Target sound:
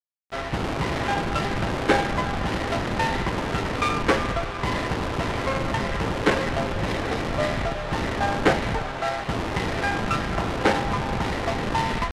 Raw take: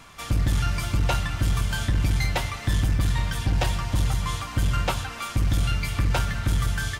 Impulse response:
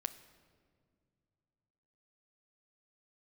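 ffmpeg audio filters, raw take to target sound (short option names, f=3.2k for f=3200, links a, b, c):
-filter_complex "[0:a]acrossover=split=200|980[a][b][c];[a]aeval=exprs='(mod(31.6*val(0)+1,2)-1)/31.6':c=same[d];[d][b][c]amix=inputs=3:normalize=0,acrusher=bits=5:mix=0:aa=0.000001,adynamicsmooth=sensitivity=7:basefreq=2.6k,asetrate=25442,aresample=44100,volume=6.5dB"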